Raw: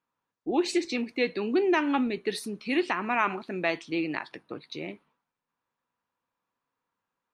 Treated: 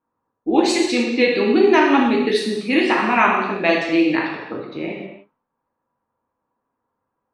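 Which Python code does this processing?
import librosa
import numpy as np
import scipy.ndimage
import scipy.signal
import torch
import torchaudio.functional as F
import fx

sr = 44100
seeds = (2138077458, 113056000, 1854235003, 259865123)

y = fx.env_lowpass(x, sr, base_hz=1000.0, full_db=-24.0)
y = fx.rev_gated(y, sr, seeds[0], gate_ms=340, shape='falling', drr_db=-2.5)
y = y * librosa.db_to_amplitude(7.0)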